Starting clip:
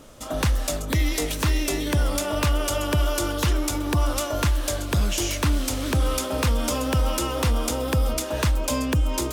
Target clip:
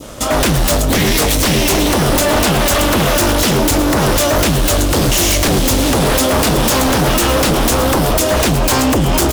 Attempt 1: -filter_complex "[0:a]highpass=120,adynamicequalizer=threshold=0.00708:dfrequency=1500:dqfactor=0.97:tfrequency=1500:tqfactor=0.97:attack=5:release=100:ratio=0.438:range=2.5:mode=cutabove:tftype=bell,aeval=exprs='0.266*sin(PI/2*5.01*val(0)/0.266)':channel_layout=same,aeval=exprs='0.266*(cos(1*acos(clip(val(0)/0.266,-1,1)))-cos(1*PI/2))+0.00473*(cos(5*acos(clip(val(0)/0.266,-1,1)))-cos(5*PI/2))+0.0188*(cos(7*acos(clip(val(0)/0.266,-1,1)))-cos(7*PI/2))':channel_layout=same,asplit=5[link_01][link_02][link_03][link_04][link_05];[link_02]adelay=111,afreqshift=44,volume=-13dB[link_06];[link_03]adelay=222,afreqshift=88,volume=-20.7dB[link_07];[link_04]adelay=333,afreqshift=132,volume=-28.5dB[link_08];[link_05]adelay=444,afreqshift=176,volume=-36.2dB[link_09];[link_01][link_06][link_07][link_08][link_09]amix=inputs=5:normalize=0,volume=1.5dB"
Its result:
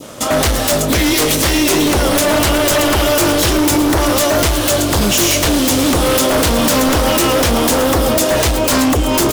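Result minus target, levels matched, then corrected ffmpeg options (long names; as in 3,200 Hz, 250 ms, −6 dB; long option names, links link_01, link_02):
125 Hz band −3.5 dB
-filter_complex "[0:a]highpass=31,adynamicequalizer=threshold=0.00708:dfrequency=1500:dqfactor=0.97:tfrequency=1500:tqfactor=0.97:attack=5:release=100:ratio=0.438:range=2.5:mode=cutabove:tftype=bell,aeval=exprs='0.266*sin(PI/2*5.01*val(0)/0.266)':channel_layout=same,aeval=exprs='0.266*(cos(1*acos(clip(val(0)/0.266,-1,1)))-cos(1*PI/2))+0.00473*(cos(5*acos(clip(val(0)/0.266,-1,1)))-cos(5*PI/2))+0.0188*(cos(7*acos(clip(val(0)/0.266,-1,1)))-cos(7*PI/2))':channel_layout=same,asplit=5[link_01][link_02][link_03][link_04][link_05];[link_02]adelay=111,afreqshift=44,volume=-13dB[link_06];[link_03]adelay=222,afreqshift=88,volume=-20.7dB[link_07];[link_04]adelay=333,afreqshift=132,volume=-28.5dB[link_08];[link_05]adelay=444,afreqshift=176,volume=-36.2dB[link_09];[link_01][link_06][link_07][link_08][link_09]amix=inputs=5:normalize=0,volume=1.5dB"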